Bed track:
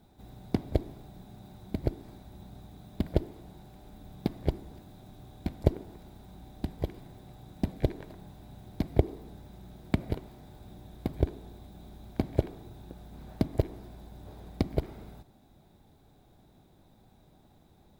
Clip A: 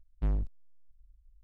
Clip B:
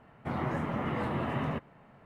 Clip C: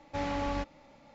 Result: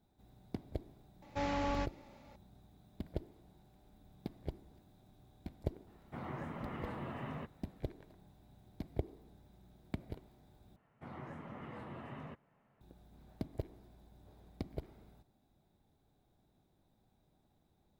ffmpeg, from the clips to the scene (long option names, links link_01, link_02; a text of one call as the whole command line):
ffmpeg -i bed.wav -i cue0.wav -i cue1.wav -i cue2.wav -filter_complex "[2:a]asplit=2[link_01][link_02];[0:a]volume=-13.5dB,asplit=2[link_03][link_04];[link_03]atrim=end=10.764[link_05];[link_02]atrim=end=2.05,asetpts=PTS-STARTPTS,volume=-15.5dB[link_06];[link_04]atrim=start=12.806[link_07];[3:a]atrim=end=1.14,asetpts=PTS-STARTPTS,volume=-2.5dB,afade=type=in:duration=0.004:curve=hsin,afade=type=out:start_time=1.136:duration=0.004:curve=hsin,adelay=1220[link_08];[link_01]atrim=end=2.05,asetpts=PTS-STARTPTS,volume=-11dB,afade=type=in:duration=0.004:curve=hsin,afade=type=out:start_time=2.046:duration=0.004:curve=hsin,adelay=5870[link_09];[link_05][link_06]acrossfade=duration=0.004:curve1=hsin:curve2=hsin[link_10];[link_10][link_07]acrossfade=duration=0.004:curve1=hsin:curve2=hsin[link_11];[link_11][link_08][link_09]amix=inputs=3:normalize=0" out.wav